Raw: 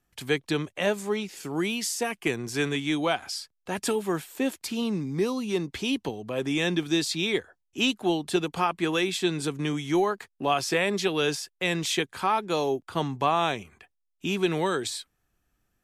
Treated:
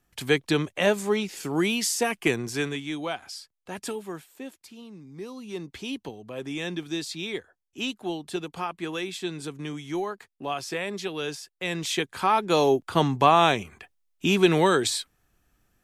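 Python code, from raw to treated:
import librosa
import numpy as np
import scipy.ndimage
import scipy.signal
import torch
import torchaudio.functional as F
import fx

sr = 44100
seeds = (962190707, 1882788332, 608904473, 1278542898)

y = fx.gain(x, sr, db=fx.line((2.34, 3.5), (2.87, -5.5), (3.84, -5.5), (4.88, -17.0), (5.67, -6.0), (11.39, -6.0), (12.65, 6.0)))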